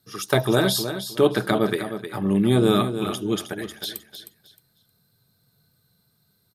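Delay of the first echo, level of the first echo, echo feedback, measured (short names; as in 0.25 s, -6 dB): 0.311 s, -9.5 dB, 23%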